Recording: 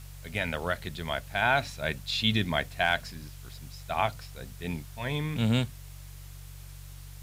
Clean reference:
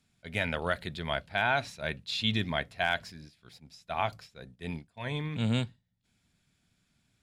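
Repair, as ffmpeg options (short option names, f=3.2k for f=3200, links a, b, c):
-af "bandreject=f=47.1:t=h:w=4,bandreject=f=94.2:t=h:w=4,bandreject=f=141.3:t=h:w=4,afwtdn=0.0022,asetnsamples=n=441:p=0,asendcmd='1.42 volume volume -3dB',volume=0dB"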